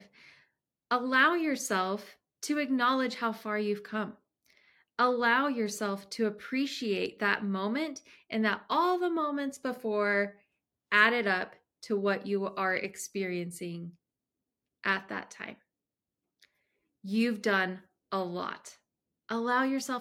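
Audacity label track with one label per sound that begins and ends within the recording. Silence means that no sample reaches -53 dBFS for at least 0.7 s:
14.840000	15.550000	sound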